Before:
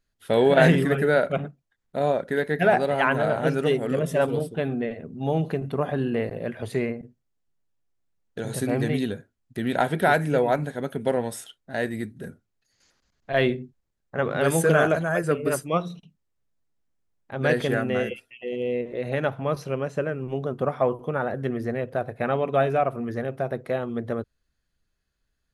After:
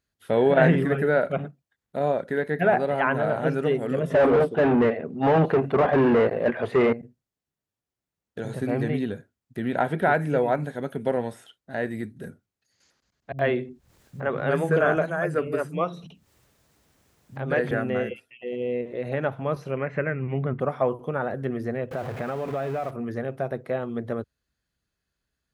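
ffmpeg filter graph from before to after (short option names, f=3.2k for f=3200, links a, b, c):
-filter_complex "[0:a]asettb=1/sr,asplit=3[a][b][c];[a]atrim=end=4.104[d];[b]atrim=start=4.1:end=6.93,asetpts=PTS-STARTPTS,afade=t=in:d=0.004:c=qsin,afade=t=out:st=2.826:d=0.004:c=qsin,agate=range=-10dB:threshold=-29dB:ratio=16:release=100:detection=peak,asplit=2[e][f];[f]highpass=f=720:p=1,volume=31dB,asoftclip=type=tanh:threshold=-9.5dB[g];[e][g]amix=inputs=2:normalize=0,lowpass=f=1.5k:p=1,volume=-6dB[h];[c]atrim=start=6.926[i];[d][h]acrossfade=d=0.004:c1=hsin:c2=qsin[j];[j][i]acrossfade=d=0.004:c1=qsin:c2=hsin,asettb=1/sr,asplit=3[k][l][m];[k]atrim=end=13.324[n];[l]atrim=start=13.32:end=17.71,asetpts=PTS-STARTPTS,afade=t=in:d=0.004:c=qsin,afade=t=out:st=4.386:d=0.004:c=qsin,acompressor=mode=upward:threshold=-28dB:ratio=2.5:attack=3.2:release=140:knee=2.83:detection=peak,acrossover=split=210[o][p];[p]adelay=70[q];[o][q]amix=inputs=2:normalize=0,atrim=end_sample=193599[r];[m]atrim=start=17.706[s];[n][r]acrossfade=d=0.004:c1=hsin:c2=qsin[t];[t][s]acrossfade=d=0.004:c1=qsin:c2=hsin,asettb=1/sr,asplit=3[u][v][w];[u]atrim=end=19.774[x];[v]atrim=start=19.77:end=20.6,asetpts=PTS-STARTPTS,afade=t=in:d=0.004:c=qsin,afade=t=out:st=0.826:d=0.004:c=qsin,asubboost=boost=10:cutoff=230,acompressor=mode=upward:threshold=-30dB:ratio=2.5:attack=3.2:release=140:knee=2.83:detection=peak,lowpass=f=2.1k:t=q:w=7.7[y];[w]atrim=start=20.596[z];[x][y]acrossfade=d=0.004:c1=hsin:c2=qsin[aa];[aa][z]acrossfade=d=0.004:c1=qsin:c2=hsin,asettb=1/sr,asplit=3[ab][ac][ad];[ab]atrim=end=21.914[ae];[ac]atrim=start=21.91:end=22.91,asetpts=PTS-STARTPTS,afade=t=in:d=0.004:c=qsin,afade=t=out:st=0.996:d=0.004:c=qsin,aeval=exprs='val(0)+0.5*0.0376*sgn(val(0))':c=same,acompressor=threshold=-25dB:ratio=4:attack=3.2:release=140:knee=1:detection=peak[af];[ad]atrim=start=22.906[ag];[ae][af]acrossfade=d=0.004:c1=hsin:c2=qsin[ah];[ah][ag]acrossfade=d=0.004:c1=qsin:c2=hsin,acrossover=split=2600[ai][aj];[aj]acompressor=threshold=-51dB:ratio=4:attack=1:release=60[ak];[ai][ak]amix=inputs=2:normalize=0,highpass=58,volume=-1dB"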